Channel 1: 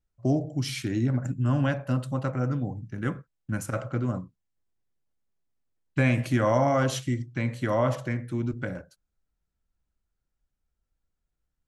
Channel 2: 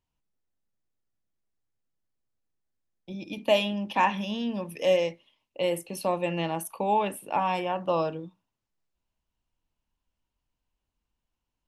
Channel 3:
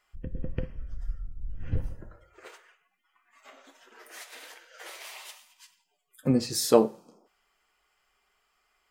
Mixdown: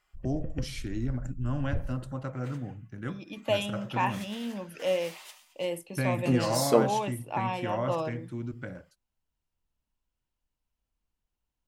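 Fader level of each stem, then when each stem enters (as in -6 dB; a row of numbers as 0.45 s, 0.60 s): -7.0 dB, -5.0 dB, -3.0 dB; 0.00 s, 0.00 s, 0.00 s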